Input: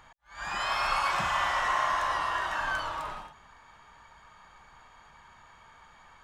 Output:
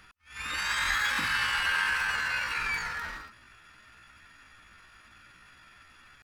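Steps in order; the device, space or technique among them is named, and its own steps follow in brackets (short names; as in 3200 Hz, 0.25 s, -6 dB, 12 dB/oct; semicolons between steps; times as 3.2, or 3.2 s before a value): chipmunk voice (pitch shift +7 st)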